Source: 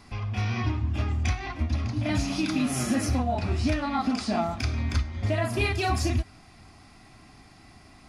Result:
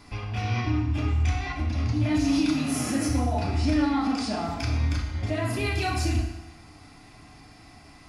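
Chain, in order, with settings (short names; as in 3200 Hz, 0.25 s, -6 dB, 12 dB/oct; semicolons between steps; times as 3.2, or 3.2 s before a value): limiter -21 dBFS, peak gain reduction 6 dB; FDN reverb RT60 1 s, low-frequency decay 0.8×, high-frequency decay 0.9×, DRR 1 dB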